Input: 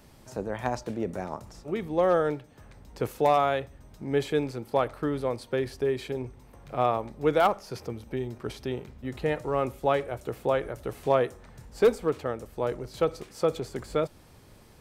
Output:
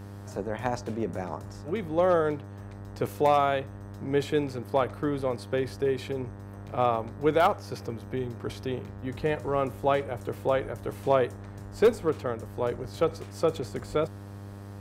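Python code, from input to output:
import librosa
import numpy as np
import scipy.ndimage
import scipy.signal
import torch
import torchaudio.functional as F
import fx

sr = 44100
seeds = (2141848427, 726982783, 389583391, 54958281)

y = fx.dmg_buzz(x, sr, base_hz=100.0, harmonics=19, level_db=-42.0, tilt_db=-7, odd_only=False)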